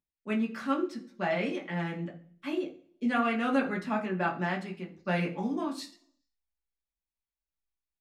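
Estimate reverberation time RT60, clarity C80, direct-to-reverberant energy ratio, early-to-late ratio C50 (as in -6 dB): 0.55 s, 16.5 dB, -2.5 dB, 12.0 dB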